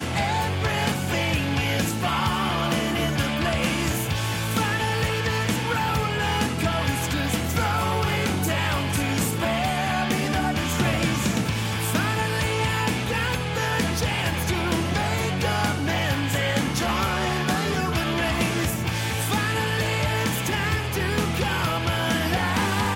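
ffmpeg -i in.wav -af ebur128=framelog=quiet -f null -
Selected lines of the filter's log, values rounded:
Integrated loudness:
  I:         -23.9 LUFS
  Threshold: -33.9 LUFS
Loudness range:
  LRA:         0.4 LU
  Threshold: -43.9 LUFS
  LRA low:   -24.1 LUFS
  LRA high:  -23.7 LUFS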